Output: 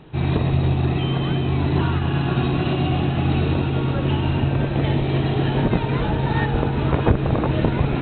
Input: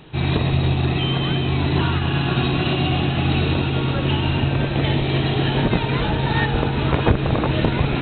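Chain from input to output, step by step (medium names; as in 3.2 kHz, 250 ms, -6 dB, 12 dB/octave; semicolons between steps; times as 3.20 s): treble shelf 2.4 kHz -11.5 dB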